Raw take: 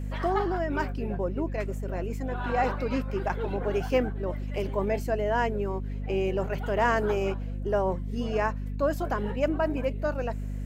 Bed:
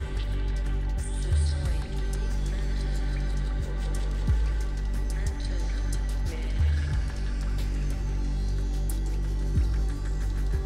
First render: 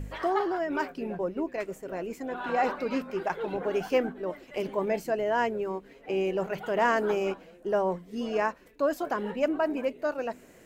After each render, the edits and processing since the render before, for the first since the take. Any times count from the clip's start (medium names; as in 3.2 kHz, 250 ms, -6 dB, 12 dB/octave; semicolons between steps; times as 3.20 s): de-hum 50 Hz, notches 5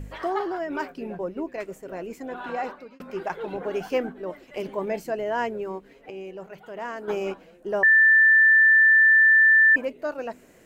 2.39–3.00 s: fade out; 6.10–7.08 s: gain -9.5 dB; 7.83–9.76 s: bleep 1.77 kHz -12.5 dBFS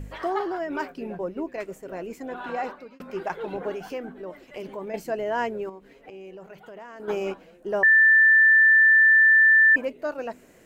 3.72–4.94 s: compression 2:1, threshold -35 dBFS; 5.69–7.00 s: compression 10:1, threshold -38 dBFS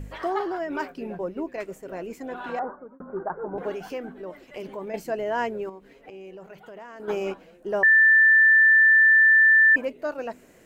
2.59–3.58 s: steep low-pass 1.5 kHz 48 dB/octave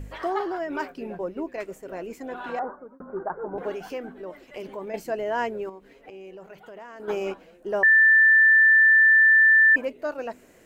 peaking EQ 160 Hz -3 dB 0.95 oct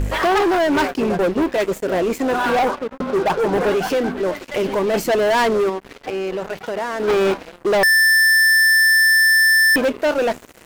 waveshaping leveller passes 5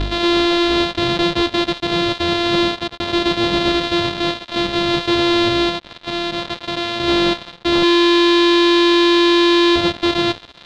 sorted samples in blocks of 128 samples; resonant low-pass 3.8 kHz, resonance Q 4.6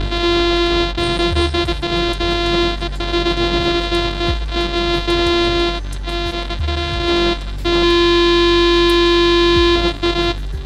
add bed +3 dB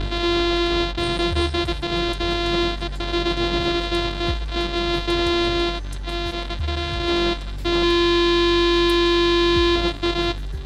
trim -5 dB